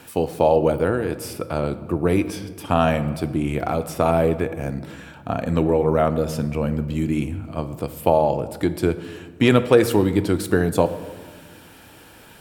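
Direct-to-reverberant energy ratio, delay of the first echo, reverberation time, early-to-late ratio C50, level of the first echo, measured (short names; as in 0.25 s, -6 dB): 11.0 dB, none, 1.4 s, 13.5 dB, none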